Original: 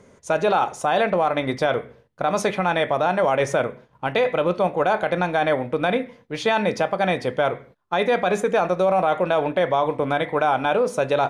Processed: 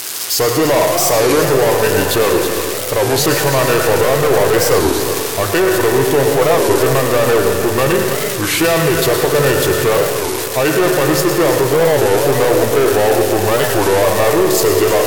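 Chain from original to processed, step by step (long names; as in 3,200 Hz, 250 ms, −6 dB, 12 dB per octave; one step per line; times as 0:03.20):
spike at every zero crossing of −17 dBFS
parametric band 280 Hz −11 dB 0.47 octaves
echo machine with several playback heads 82 ms, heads first and third, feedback 47%, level −14 dB
leveller curve on the samples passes 3
comb and all-pass reverb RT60 1.9 s, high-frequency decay 0.75×, pre-delay 45 ms, DRR 5.5 dB
speed change −25%
wow of a warped record 33 1/3 rpm, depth 250 cents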